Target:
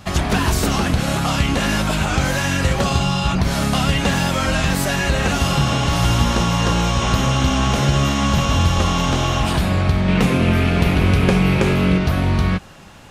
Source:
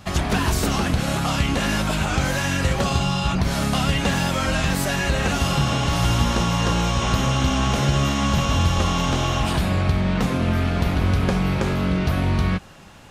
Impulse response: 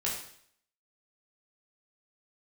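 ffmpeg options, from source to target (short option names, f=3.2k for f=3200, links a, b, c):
-filter_complex "[0:a]asettb=1/sr,asplit=3[a][b][c];[a]atrim=end=10.084[d];[b]atrim=start=10.08:end=11.98,asetpts=PTS-STARTPTS,afade=t=in:d=0.004:c=qsin,afade=t=out:st=1.896:d=0.004:c=qsin,equalizer=f=160:t=o:w=0.67:g=4,equalizer=f=400:t=o:w=0.67:g=5,equalizer=f=2.5k:t=o:w=0.67:g=7,equalizer=f=10k:t=o:w=0.67:g=4[e];[c]atrim=start=11.976[f];[d][e]acrossfade=d=0.004:c1=hsin:c2=qsin[g];[g][f]acrossfade=d=0.004:c1=qsin:c2=hsin,volume=3dB"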